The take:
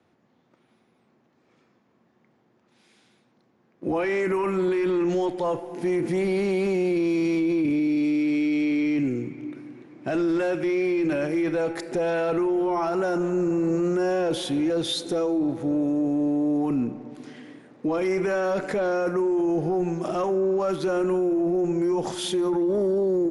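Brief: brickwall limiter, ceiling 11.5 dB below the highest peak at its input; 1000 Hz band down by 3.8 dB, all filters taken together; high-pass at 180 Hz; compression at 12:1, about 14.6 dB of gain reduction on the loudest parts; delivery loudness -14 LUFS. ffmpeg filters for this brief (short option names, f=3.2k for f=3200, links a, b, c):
-af "highpass=180,equalizer=f=1k:t=o:g=-5.5,acompressor=threshold=-37dB:ratio=12,volume=28.5dB,alimiter=limit=-8dB:level=0:latency=1"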